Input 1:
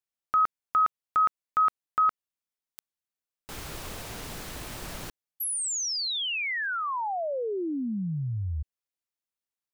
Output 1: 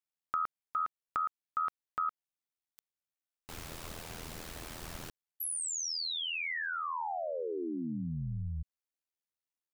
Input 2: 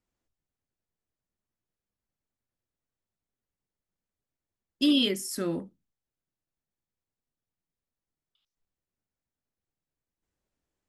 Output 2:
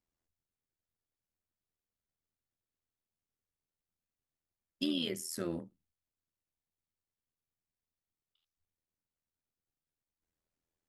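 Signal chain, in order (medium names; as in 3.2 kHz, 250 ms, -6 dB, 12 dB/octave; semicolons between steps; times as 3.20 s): compression 5:1, threshold -25 dBFS; AM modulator 82 Hz, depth 60%; trim -2.5 dB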